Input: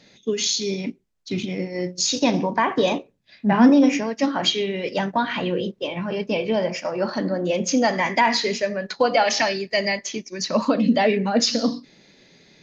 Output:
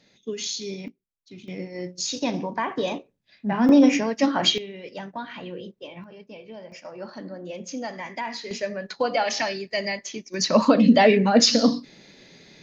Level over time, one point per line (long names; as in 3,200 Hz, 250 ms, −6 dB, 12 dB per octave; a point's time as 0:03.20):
−7.5 dB
from 0:00.88 −17.5 dB
from 0:01.48 −6.5 dB
from 0:03.69 +0.5 dB
from 0:04.58 −12 dB
from 0:06.04 −19 dB
from 0:06.72 −13 dB
from 0:08.51 −5 dB
from 0:10.34 +3 dB